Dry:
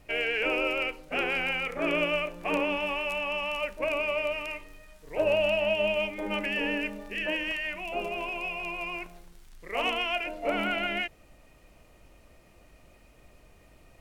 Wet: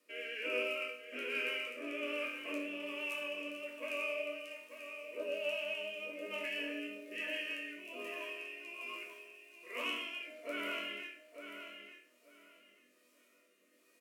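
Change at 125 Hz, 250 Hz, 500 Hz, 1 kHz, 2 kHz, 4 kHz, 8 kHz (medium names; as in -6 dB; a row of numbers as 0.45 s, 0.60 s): under -25 dB, -11.0 dB, -12.0 dB, -15.5 dB, -9.5 dB, -9.0 dB, no reading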